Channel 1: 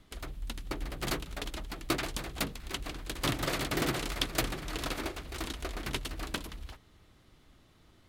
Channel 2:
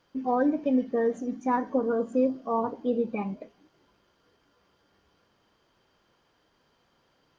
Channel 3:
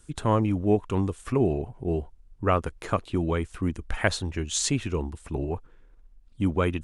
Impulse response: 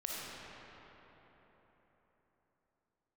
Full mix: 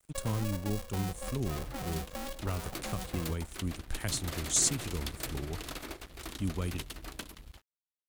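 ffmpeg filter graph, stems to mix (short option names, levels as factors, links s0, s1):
-filter_complex "[0:a]adelay=850,volume=0.631[s0];[1:a]alimiter=limit=0.0891:level=0:latency=1:release=28,aeval=exprs='val(0)*sgn(sin(2*PI*280*n/s))':c=same,volume=0.668[s1];[2:a]bass=f=250:g=6,treble=f=4000:g=12,volume=0.266[s2];[s0][s1]amix=inputs=2:normalize=0,volume=28.2,asoftclip=hard,volume=0.0355,acompressor=threshold=0.02:ratio=6,volume=1[s3];[s2][s3]amix=inputs=2:normalize=0,highshelf=f=7800:g=6.5,acrossover=split=240|3000[s4][s5][s6];[s5]acompressor=threshold=0.0141:ratio=6[s7];[s4][s7][s6]amix=inputs=3:normalize=0,aeval=exprs='sgn(val(0))*max(abs(val(0))-0.00224,0)':c=same"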